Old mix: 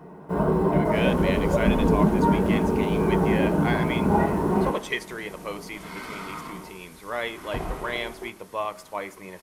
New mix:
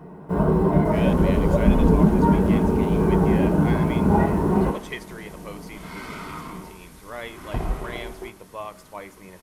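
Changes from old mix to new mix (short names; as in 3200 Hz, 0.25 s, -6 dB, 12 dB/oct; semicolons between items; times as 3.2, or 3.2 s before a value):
speech -6.0 dB; master: add low shelf 180 Hz +8 dB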